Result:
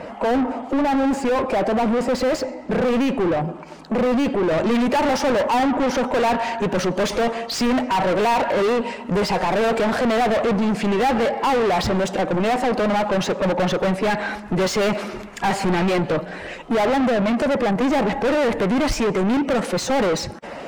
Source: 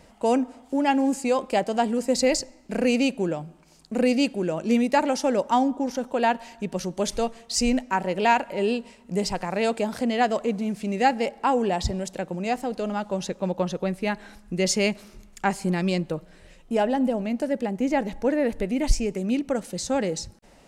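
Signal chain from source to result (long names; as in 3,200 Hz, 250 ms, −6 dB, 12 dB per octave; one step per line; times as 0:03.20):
spectral magnitudes quantised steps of 15 dB
high-shelf EQ 2,900 Hz −11 dB
mid-hump overdrive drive 37 dB, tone 1,200 Hz, clips at −9.5 dBFS, from 0:04.51 tone 2,400 Hz
level −2.5 dB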